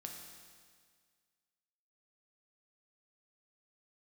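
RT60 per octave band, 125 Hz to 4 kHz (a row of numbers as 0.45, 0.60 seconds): 1.8, 1.8, 1.8, 1.8, 1.8, 1.8 seconds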